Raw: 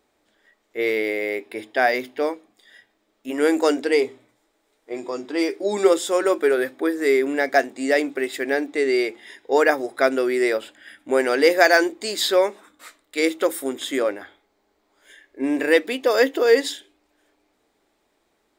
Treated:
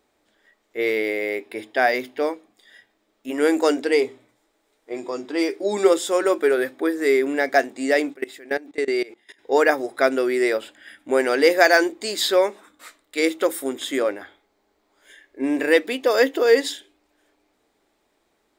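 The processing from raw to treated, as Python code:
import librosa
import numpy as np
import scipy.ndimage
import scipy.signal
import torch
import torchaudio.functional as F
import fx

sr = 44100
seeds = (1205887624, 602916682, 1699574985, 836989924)

y = fx.level_steps(x, sr, step_db=21, at=(8.13, 9.38), fade=0.02)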